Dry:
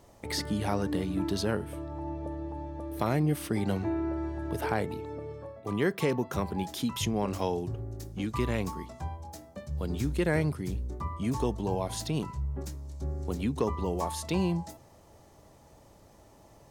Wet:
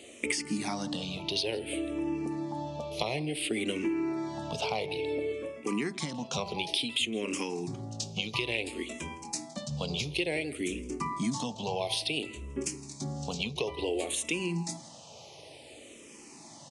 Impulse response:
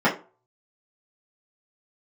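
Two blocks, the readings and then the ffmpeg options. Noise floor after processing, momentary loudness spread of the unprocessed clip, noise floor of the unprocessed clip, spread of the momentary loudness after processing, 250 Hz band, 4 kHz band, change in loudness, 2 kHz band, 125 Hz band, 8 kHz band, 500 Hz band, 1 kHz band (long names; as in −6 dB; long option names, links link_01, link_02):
−51 dBFS, 10 LU, −57 dBFS, 12 LU, −2.5 dB, +8.5 dB, −1.0 dB, +4.0 dB, −7.5 dB, +5.5 dB, −1.5 dB, −2.5 dB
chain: -filter_complex "[0:a]highpass=180,highshelf=frequency=2000:width_type=q:width=3:gain=8,asplit=2[link_01][link_02];[1:a]atrim=start_sample=2205,asetrate=42777,aresample=44100,lowpass=frequency=1200:width=0.5412,lowpass=frequency=1200:width=1.3066[link_03];[link_02][link_03]afir=irnorm=-1:irlink=0,volume=-30dB[link_04];[link_01][link_04]amix=inputs=2:normalize=0,acompressor=threshold=-35dB:ratio=6,asplit=2[link_05][link_06];[link_06]adelay=163.3,volume=-18dB,highshelf=frequency=4000:gain=-3.67[link_07];[link_05][link_07]amix=inputs=2:normalize=0,aresample=22050,aresample=44100,asplit=2[link_08][link_09];[link_09]afreqshift=-0.57[link_10];[link_08][link_10]amix=inputs=2:normalize=1,volume=9dB"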